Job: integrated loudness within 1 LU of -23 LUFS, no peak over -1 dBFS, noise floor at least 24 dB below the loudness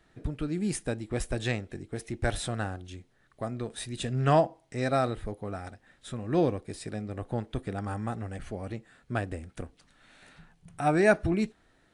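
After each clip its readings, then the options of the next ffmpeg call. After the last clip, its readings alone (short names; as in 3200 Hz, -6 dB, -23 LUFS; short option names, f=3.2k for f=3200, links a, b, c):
loudness -31.0 LUFS; peak -10.5 dBFS; loudness target -23.0 LUFS
-> -af "volume=8dB"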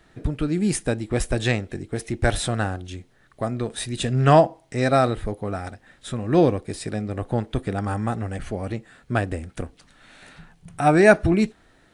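loudness -23.0 LUFS; peak -2.5 dBFS; noise floor -58 dBFS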